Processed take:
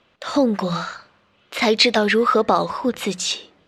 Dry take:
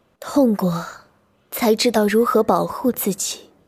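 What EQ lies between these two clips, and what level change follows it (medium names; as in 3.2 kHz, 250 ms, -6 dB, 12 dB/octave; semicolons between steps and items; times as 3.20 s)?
distance through air 82 m; peaking EQ 3.1 kHz +14 dB 2.3 oct; hum notches 60/120/180 Hz; -3.0 dB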